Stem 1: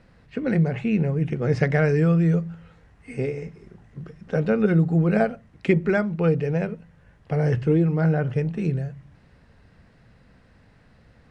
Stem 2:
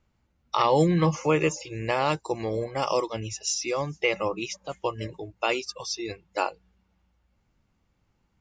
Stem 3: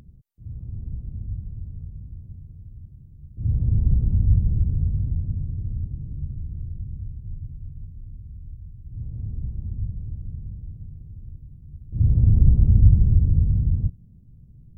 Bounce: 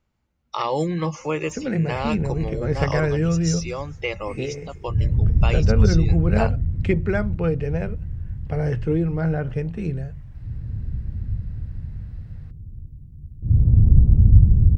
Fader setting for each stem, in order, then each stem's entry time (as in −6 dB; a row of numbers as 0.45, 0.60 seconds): −2.0, −2.5, +2.0 decibels; 1.20, 0.00, 1.50 seconds